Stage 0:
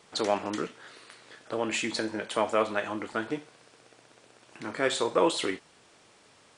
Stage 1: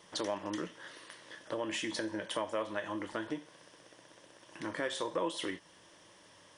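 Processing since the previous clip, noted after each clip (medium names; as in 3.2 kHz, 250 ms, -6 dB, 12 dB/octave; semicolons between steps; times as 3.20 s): rippled EQ curve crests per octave 1.2, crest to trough 8 dB; compression 2.5:1, threshold -34 dBFS, peak gain reduction 11.5 dB; trim -1.5 dB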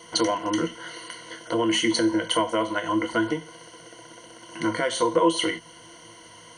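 rippled EQ curve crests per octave 1.9, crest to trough 17 dB; trim +9 dB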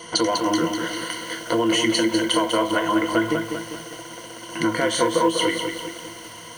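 compression 2.5:1, threshold -28 dBFS, peak gain reduction 9.5 dB; on a send at -20 dB: reverberation RT60 0.65 s, pre-delay 3 ms; on the sum: bit-crushed delay 198 ms, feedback 55%, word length 8-bit, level -5.5 dB; trim +7.5 dB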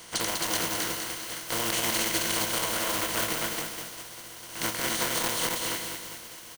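spectral contrast reduction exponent 0.32; delay 266 ms -3 dB; transformer saturation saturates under 890 Hz; trim -7.5 dB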